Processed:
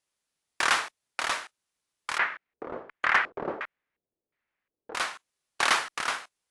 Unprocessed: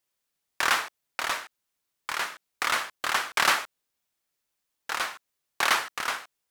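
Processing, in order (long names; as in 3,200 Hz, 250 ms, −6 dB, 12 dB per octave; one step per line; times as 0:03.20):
0:02.18–0:04.95: auto-filter low-pass square 1.4 Hz 440–2,000 Hz
asymmetric clip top −14 dBFS
AAC 96 kbit/s 24,000 Hz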